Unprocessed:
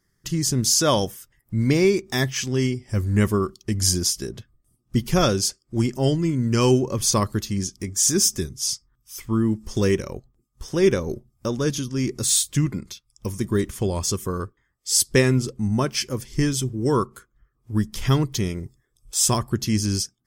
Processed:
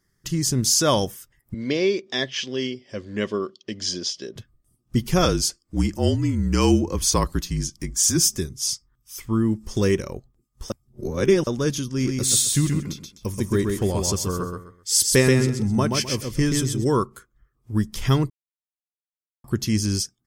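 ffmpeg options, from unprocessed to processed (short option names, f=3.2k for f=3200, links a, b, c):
-filter_complex "[0:a]asettb=1/sr,asplit=3[a][b][c];[a]atrim=end=1.544[d];[b]atrim=start=1.54:end=4.36,asetpts=PTS-STARTPTS,afade=t=in:d=0.004:c=qsin,afade=t=out:st=2.816:d=0.004:c=qsin,highpass=300,equalizer=f=340:t=q:w=4:g=-3,equalizer=f=550:t=q:w=4:g=5,equalizer=f=850:t=q:w=4:g=-9,equalizer=f=1.3k:t=q:w=4:g=-7,equalizer=f=2.2k:t=q:w=4:g=-3,equalizer=f=3.2k:t=q:w=4:g=7,lowpass=f=5.2k:w=0.5412,lowpass=f=5.2k:w=1.3066[e];[c]atrim=start=4.356[f];[d][e]acrossfade=d=0.004:c1=hsin:c2=qsin[g];[g][f]acrossfade=d=0.004:c1=qsin:c2=hsin,asettb=1/sr,asplit=3[h][i][j];[h]atrim=end=5.254[k];[i]atrim=start=5.25:end=8.3,asetpts=PTS-STARTPTS,afade=t=in:d=0.004:c=qsin,afade=t=out:st=3.046:d=0.004:c=qsin,afreqshift=-43[l];[j]atrim=start=8.296[m];[k][l]acrossfade=d=0.004:c1=hsin:c2=qsin[n];[n][m]acrossfade=d=0.004:c1=qsin:c2=hsin,asplit=3[o][p][q];[o]afade=t=out:st=11.99:d=0.02[r];[p]aecho=1:1:129|258|387:0.631|0.158|0.0394,afade=t=in:st=11.99:d=0.02,afade=t=out:st=16.83:d=0.02[s];[q]afade=t=in:st=16.83:d=0.02[t];[r][s][t]amix=inputs=3:normalize=0,asplit=5[u][v][w][x][y];[u]atrim=end=10.702[z];[v]atrim=start=10.698:end=11.472,asetpts=PTS-STARTPTS,areverse[aa];[w]atrim=start=11.468:end=18.3,asetpts=PTS-STARTPTS,afade=t=out:st=6.828:d=0.004:c=hsin[ab];[x]atrim=start=18.3:end=19.44,asetpts=PTS-STARTPTS,volume=0[ac];[y]atrim=start=19.44,asetpts=PTS-STARTPTS,afade=t=in:d=0.004:c=hsin[ad];[z][aa]acrossfade=d=0.004:c1=hsin:c2=hsin[ae];[ab][ac][ad]concat=n=3:v=0:a=1[af];[ae][af]acrossfade=d=0.004:c1=hsin:c2=hsin"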